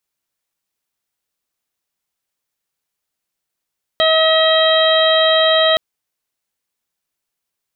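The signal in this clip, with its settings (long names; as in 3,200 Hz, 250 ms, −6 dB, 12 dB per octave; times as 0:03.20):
steady harmonic partials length 1.77 s, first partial 639 Hz, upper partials −7/−7/−18.5/−4.5/−5 dB, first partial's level −13 dB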